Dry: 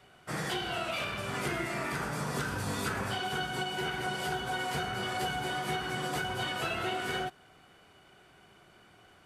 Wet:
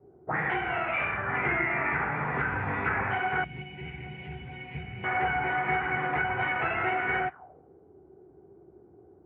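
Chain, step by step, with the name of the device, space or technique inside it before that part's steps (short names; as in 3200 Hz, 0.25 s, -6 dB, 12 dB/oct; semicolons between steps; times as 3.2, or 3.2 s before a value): envelope filter bass rig (envelope low-pass 340–2200 Hz up, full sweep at -31.5 dBFS; speaker cabinet 67–2200 Hz, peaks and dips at 71 Hz +10 dB, 210 Hz -5 dB, 580 Hz -3 dB, 820 Hz +7 dB); 3.44–5.04 EQ curve 170 Hz 0 dB, 1400 Hz -28 dB, 2600 Hz -4 dB; gain +2 dB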